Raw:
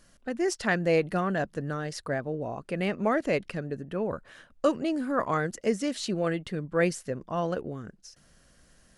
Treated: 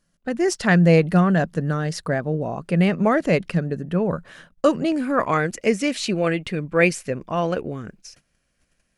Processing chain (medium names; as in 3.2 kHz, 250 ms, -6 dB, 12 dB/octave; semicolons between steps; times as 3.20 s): gate -55 dBFS, range -18 dB; peaking EQ 170 Hz +11 dB 0.33 oct, from 4.92 s 2.4 kHz; trim +6.5 dB